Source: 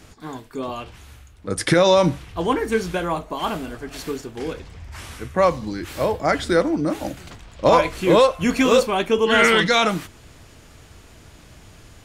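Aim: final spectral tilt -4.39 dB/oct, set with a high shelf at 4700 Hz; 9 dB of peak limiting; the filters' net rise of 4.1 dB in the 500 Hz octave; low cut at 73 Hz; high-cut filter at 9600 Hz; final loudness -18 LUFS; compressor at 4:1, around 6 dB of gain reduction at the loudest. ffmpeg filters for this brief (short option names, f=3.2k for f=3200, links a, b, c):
-af "highpass=73,lowpass=9.6k,equalizer=f=500:t=o:g=4.5,highshelf=f=4.7k:g=7,acompressor=threshold=-14dB:ratio=4,volume=6.5dB,alimiter=limit=-7dB:level=0:latency=1"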